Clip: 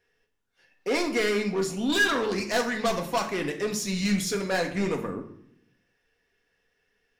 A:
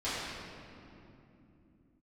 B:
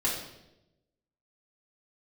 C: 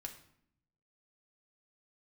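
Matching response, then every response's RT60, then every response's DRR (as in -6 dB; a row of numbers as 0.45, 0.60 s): C; 2.9, 0.90, 0.65 s; -14.5, -8.0, 3.0 dB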